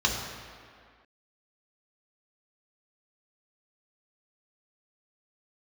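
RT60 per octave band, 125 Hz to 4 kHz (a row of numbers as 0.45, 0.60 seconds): 1.6, 1.9, 1.9, 2.2, 2.1, 1.5 seconds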